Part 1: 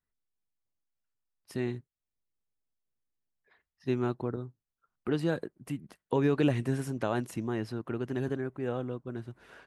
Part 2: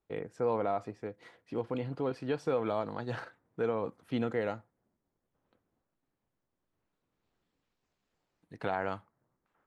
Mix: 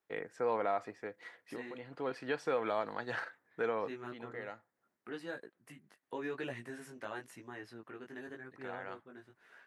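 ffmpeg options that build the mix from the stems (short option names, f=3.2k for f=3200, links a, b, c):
-filter_complex "[0:a]flanger=delay=15.5:depth=4.7:speed=0.93,volume=-7dB,asplit=2[a][b];[1:a]volume=0dB[c];[b]apad=whole_len=426158[d];[c][d]sidechaincompress=threshold=-51dB:ratio=4:attack=10:release=453[e];[a][e]amix=inputs=2:normalize=0,highpass=f=490:p=1,equalizer=f=1.8k:w=2.3:g=7.5"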